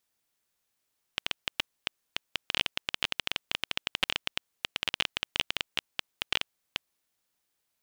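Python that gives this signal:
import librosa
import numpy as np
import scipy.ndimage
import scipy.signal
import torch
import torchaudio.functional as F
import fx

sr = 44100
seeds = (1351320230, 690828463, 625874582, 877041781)

y = fx.geiger_clicks(sr, seeds[0], length_s=5.7, per_s=13.0, level_db=-9.0)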